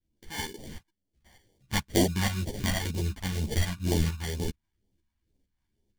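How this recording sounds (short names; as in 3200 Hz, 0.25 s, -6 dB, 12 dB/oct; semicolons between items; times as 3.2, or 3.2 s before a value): aliases and images of a low sample rate 1300 Hz, jitter 0%; phasing stages 2, 2.1 Hz, lowest notch 400–1300 Hz; tremolo saw up 2.2 Hz, depth 60%; a shimmering, thickened sound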